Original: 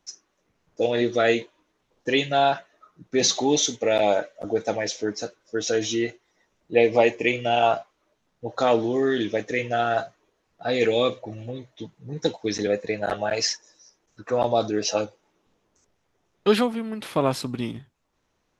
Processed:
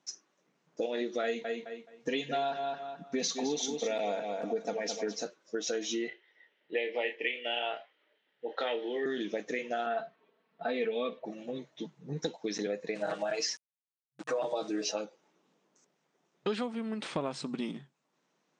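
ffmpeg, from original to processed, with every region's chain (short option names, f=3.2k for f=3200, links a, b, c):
-filter_complex "[0:a]asettb=1/sr,asplit=3[a][b][c];[a]atrim=end=1.234[d];[b]atrim=start=1.23:end=5.23,asetpts=PTS-STARTPTS,afade=t=in:d=0.004:c=qsin,afade=t=out:st=3.996:d=0.004:c=qsin,aecho=1:1:4.3:0.56,atrim=end_sample=176400,asplit=2[e][f];[f]adelay=213,lowpass=f=4.7k:p=1,volume=-8.5dB,asplit=2[g][h];[h]adelay=213,lowpass=f=4.7k:p=1,volume=0.22,asplit=2[i][j];[j]adelay=213,lowpass=f=4.7k:p=1,volume=0.22[k];[e][g][i][k]amix=inputs=4:normalize=0,atrim=end_sample=176400[l];[c]atrim=start=5.226[m];[d][l]acrossfade=d=0.004:c1=hsin:c2=qsin[n];[n][m]acrossfade=d=0.004:c1=qsin:c2=hsin,asettb=1/sr,asplit=3[o][p][q];[o]atrim=end=6.084[r];[p]atrim=start=6.08:end=9.06,asetpts=PTS-STARTPTS,afade=t=in:d=0.004:c=qsin,afade=t=out:st=2.976:d=0.004:c=qsin,highpass=440,equalizer=f=440:t=q:w=4:g=4,equalizer=f=690:t=q:w=4:g=-5,equalizer=f=1.1k:t=q:w=4:g=-10,equalizer=f=1.9k:t=q:w=4:g=10,equalizer=f=3.1k:t=q:w=4:g=10,lowpass=f=3.8k:w=0.5412,lowpass=f=3.8k:w=1.3066,asplit=2[s][t];[t]adelay=29,volume=-8dB[u];[s][u]amix=inputs=2:normalize=0,atrim=end_sample=131418[v];[q]atrim=start=9.056[w];[r][v]acrossfade=d=0.004:c1=hsin:c2=qsin[x];[x][w]acrossfade=d=0.004:c1=qsin:c2=hsin,asettb=1/sr,asplit=3[y][z][aa];[y]atrim=end=9.864[ab];[z]atrim=start=9.86:end=11.25,asetpts=PTS-STARTPTS,afade=t=in:d=0.004:c=qsin,afade=t=out:st=1.386:d=0.004:c=qsin,lowpass=f=3.6k:w=0.5412,lowpass=f=3.6k:w=1.3066,aecho=1:1:4.5:0.66,atrim=end_sample=61299[ac];[aa]atrim=start=11.246[ad];[ab][ac]acrossfade=d=0.004:c1=hsin:c2=qsin[ae];[ae][ad]acrossfade=d=0.004:c1=qsin:c2=hsin,asettb=1/sr,asplit=3[af][ag][ah];[af]atrim=end=12.954[ai];[ag]atrim=start=12.95:end=14.92,asetpts=PTS-STARTPTS,afade=t=in:d=0.004:c=qsin,afade=t=out:st=1.966:d=0.004:c=qsin,bandreject=f=60:t=h:w=6,bandreject=f=120:t=h:w=6,bandreject=f=180:t=h:w=6,bandreject=f=240:t=h:w=6,bandreject=f=300:t=h:w=6,bandreject=f=360:t=h:w=6,bandreject=f=420:t=h:w=6,bandreject=f=480:t=h:w=6,aecho=1:1:6.4:0.93,atrim=end_sample=86877,aeval=exprs='val(0)*gte(abs(val(0)),0.0119)':c=same[aj];[ah]atrim=start=14.916[ak];[ai][aj]acrossfade=d=0.004:c1=hsin:c2=qsin[al];[al][ak]acrossfade=d=0.004:c1=qsin:c2=hsin,afftfilt=real='re*between(b*sr/4096,130,9300)':imag='im*between(b*sr/4096,130,9300)':win_size=4096:overlap=0.75,acompressor=threshold=-29dB:ratio=4,volume=-2.5dB"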